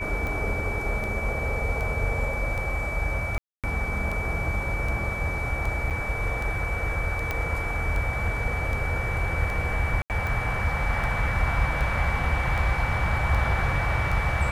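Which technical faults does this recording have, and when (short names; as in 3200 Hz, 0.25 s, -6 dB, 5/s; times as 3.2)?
tick 78 rpm
tone 2300 Hz -31 dBFS
3.38–3.64 gap 0.257 s
5.9–5.91 gap 7.4 ms
7.31 pop -13 dBFS
10.02–10.1 gap 78 ms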